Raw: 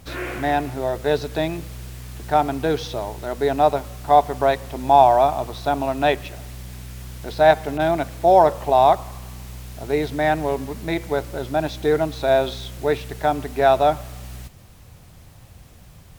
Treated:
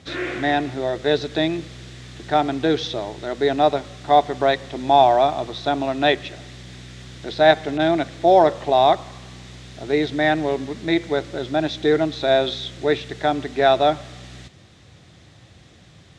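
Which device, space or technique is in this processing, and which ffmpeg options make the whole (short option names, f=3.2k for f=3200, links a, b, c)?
car door speaker: -af "highpass=100,equalizer=f=330:t=q:w=4:g=6,equalizer=f=940:t=q:w=4:g=-5,equalizer=f=1.9k:t=q:w=4:g=5,equalizer=f=3.6k:t=q:w=4:g=8,lowpass=f=7.3k:w=0.5412,lowpass=f=7.3k:w=1.3066"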